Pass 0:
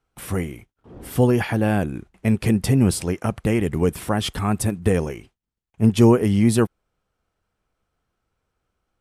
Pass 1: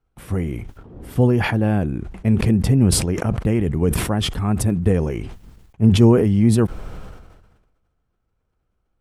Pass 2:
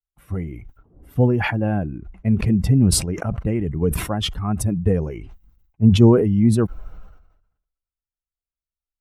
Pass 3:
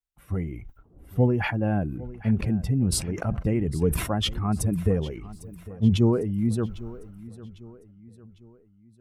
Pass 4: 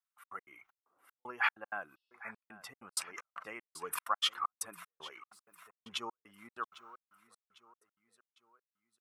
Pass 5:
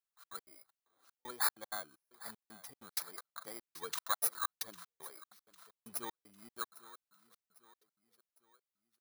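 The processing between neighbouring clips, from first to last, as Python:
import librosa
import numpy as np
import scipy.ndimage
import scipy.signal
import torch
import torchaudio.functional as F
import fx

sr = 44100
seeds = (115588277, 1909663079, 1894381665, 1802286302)

y1 = fx.tilt_eq(x, sr, slope=-2.0)
y1 = fx.sustainer(y1, sr, db_per_s=45.0)
y1 = y1 * 10.0 ** (-3.5 / 20.0)
y2 = fx.bin_expand(y1, sr, power=1.5)
y2 = y2 * 10.0 ** (1.5 / 20.0)
y3 = fx.rider(y2, sr, range_db=4, speed_s=0.5)
y3 = fx.echo_feedback(y3, sr, ms=802, feedback_pct=45, wet_db=-18)
y3 = y3 * 10.0 ** (-6.0 / 20.0)
y4 = fx.highpass_res(y3, sr, hz=1200.0, q=4.1)
y4 = fx.step_gate(y4, sr, bpm=192, pattern='xxx.x.xxx..xxx..', floor_db=-60.0, edge_ms=4.5)
y4 = fx.spec_repair(y4, sr, seeds[0], start_s=1.98, length_s=0.35, low_hz=2600.0, high_hz=5700.0, source='before')
y4 = y4 * 10.0 ** (-4.5 / 20.0)
y5 = fx.bit_reversed(y4, sr, seeds[1], block=16)
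y5 = y5 * 10.0 ** (-1.5 / 20.0)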